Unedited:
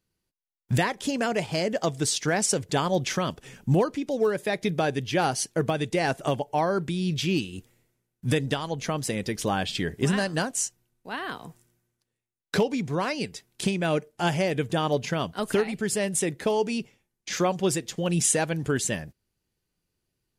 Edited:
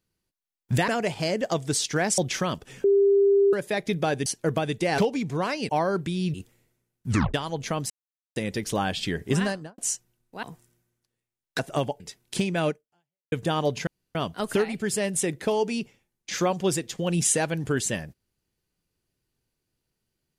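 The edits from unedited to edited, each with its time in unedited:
0:00.88–0:01.20: remove
0:02.50–0:02.94: remove
0:03.60–0:04.29: beep over 398 Hz −15.5 dBFS
0:05.02–0:05.38: remove
0:06.10–0:06.51: swap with 0:12.56–0:13.27
0:07.16–0:07.52: remove
0:08.27: tape stop 0.25 s
0:09.08: splice in silence 0.46 s
0:10.13–0:10.50: fade out and dull
0:11.15–0:11.40: remove
0:13.96–0:14.59: fade out exponential
0:15.14: splice in room tone 0.28 s

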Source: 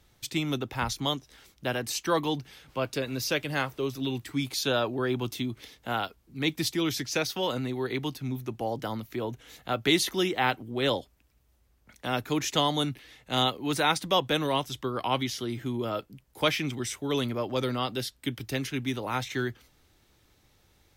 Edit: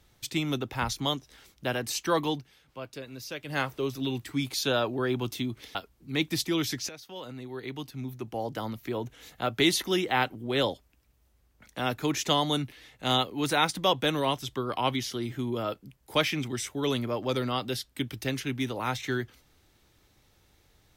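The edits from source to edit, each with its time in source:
0:02.30–0:03.59: duck −10 dB, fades 0.17 s
0:05.75–0:06.02: remove
0:07.16–0:09.08: fade in, from −18.5 dB

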